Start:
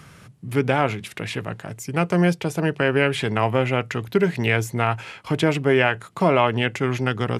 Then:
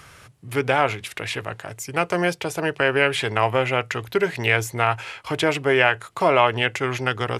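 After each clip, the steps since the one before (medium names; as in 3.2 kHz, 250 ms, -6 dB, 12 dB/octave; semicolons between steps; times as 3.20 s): peaking EQ 190 Hz -13.5 dB 1.4 oct; trim +3 dB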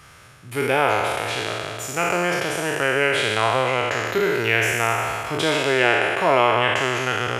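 spectral sustain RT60 2.43 s; trim -3.5 dB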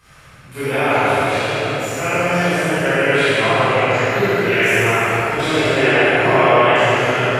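reverberation RT60 3.0 s, pre-delay 19 ms, DRR -13 dB; trim -9.5 dB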